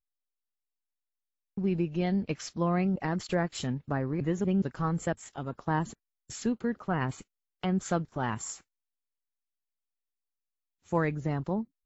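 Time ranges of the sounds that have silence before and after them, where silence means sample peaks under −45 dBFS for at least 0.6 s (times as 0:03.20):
0:01.57–0:08.57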